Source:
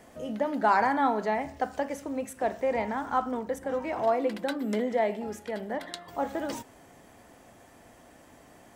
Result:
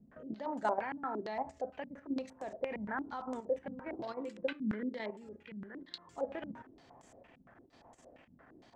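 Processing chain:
0:04.07–0:06.16: parametric band 710 Hz −14.5 dB 0.64 octaves
output level in coarse steps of 11 dB
tuned comb filter 130 Hz, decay 0.26 s, harmonics all, mix 40%
low-pass on a step sequencer 8.7 Hz 200–7,300 Hz
level −4 dB

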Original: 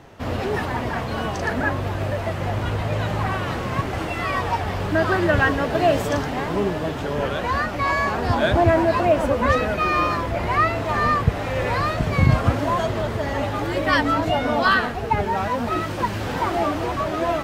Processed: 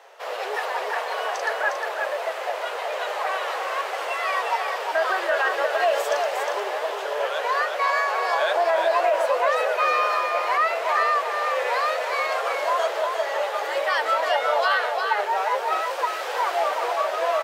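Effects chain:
Butterworth high-pass 460 Hz 48 dB per octave
brickwall limiter −13.5 dBFS, peak gain reduction 7.5 dB
single-tap delay 357 ms −5 dB

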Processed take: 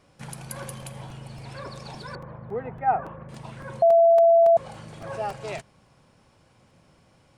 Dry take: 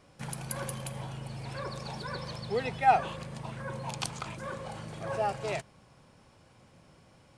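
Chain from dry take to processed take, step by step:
0:02.15–0:03.29: low-pass filter 1,600 Hz 24 dB per octave
0:03.82–0:04.57: beep over 671 Hz −12.5 dBFS
regular buffer underruns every 0.28 s, samples 128, repeat, from 0:00.82

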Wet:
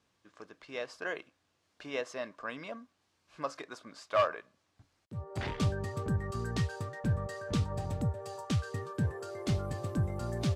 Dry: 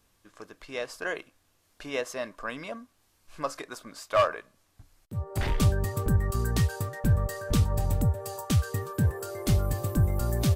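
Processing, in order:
band-pass filter 100–5,800 Hz
level −4.5 dB

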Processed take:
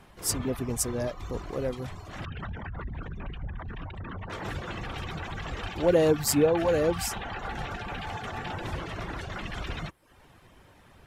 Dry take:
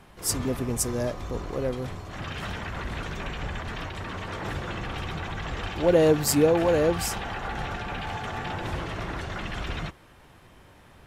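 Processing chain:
0:02.25–0:04.30: spectral envelope exaggerated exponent 2
reverb reduction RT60 0.54 s
level −1.5 dB

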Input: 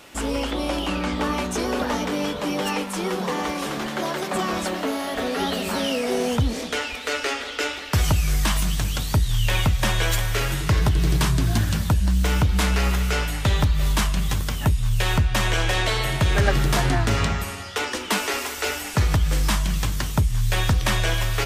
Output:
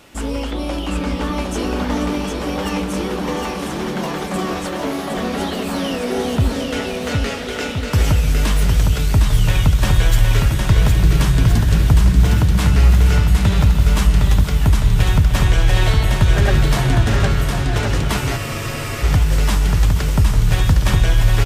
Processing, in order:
low-shelf EQ 280 Hz +7.5 dB
bouncing-ball delay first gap 760 ms, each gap 0.8×, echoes 5
convolution reverb RT60 5.0 s, pre-delay 129 ms, DRR 15.5 dB
frozen spectrum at 0:18.39, 0.63 s
level −1.5 dB

